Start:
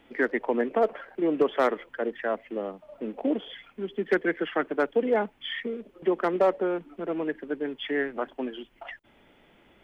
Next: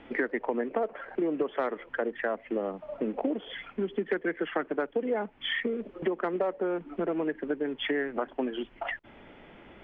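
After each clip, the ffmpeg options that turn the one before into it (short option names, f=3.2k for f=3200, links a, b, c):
-af "lowpass=2.7k,acompressor=threshold=-35dB:ratio=6,volume=8dB"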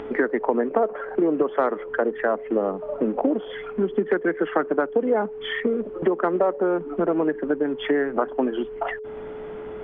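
-af "highshelf=f=1.7k:t=q:w=1.5:g=-6.5,acompressor=mode=upward:threshold=-43dB:ratio=2.5,aeval=exprs='val(0)+0.01*sin(2*PI*430*n/s)':c=same,volume=7.5dB"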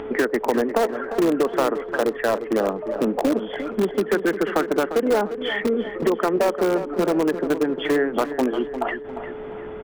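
-filter_complex "[0:a]asplit=2[a][b];[b]aeval=exprs='(mod(5.62*val(0)+1,2)-1)/5.62':c=same,volume=-11dB[c];[a][c]amix=inputs=2:normalize=0,asplit=2[d][e];[e]adelay=350,lowpass=f=3k:p=1,volume=-10.5dB,asplit=2[f][g];[g]adelay=350,lowpass=f=3k:p=1,volume=0.45,asplit=2[h][i];[i]adelay=350,lowpass=f=3k:p=1,volume=0.45,asplit=2[j][k];[k]adelay=350,lowpass=f=3k:p=1,volume=0.45,asplit=2[l][m];[m]adelay=350,lowpass=f=3k:p=1,volume=0.45[n];[d][f][h][j][l][n]amix=inputs=6:normalize=0"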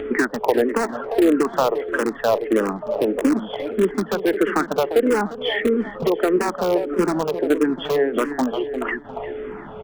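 -filter_complex "[0:a]asplit=2[a][b];[b]afreqshift=-1.6[c];[a][c]amix=inputs=2:normalize=1,volume=4.5dB"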